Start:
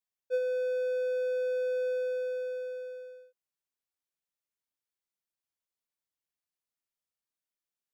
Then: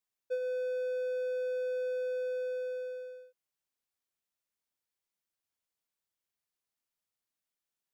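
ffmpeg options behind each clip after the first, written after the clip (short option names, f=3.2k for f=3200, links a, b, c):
-af "acompressor=threshold=-33dB:ratio=6,volume=1.5dB"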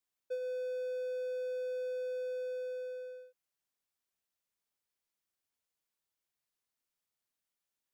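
-filter_complex "[0:a]acrossover=split=460|3000[a][b][c];[b]acompressor=threshold=-46dB:ratio=3[d];[a][d][c]amix=inputs=3:normalize=0"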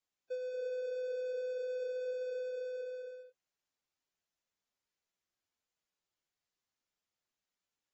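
-af "volume=-1.5dB" -ar 44100 -c:a aac -b:a 24k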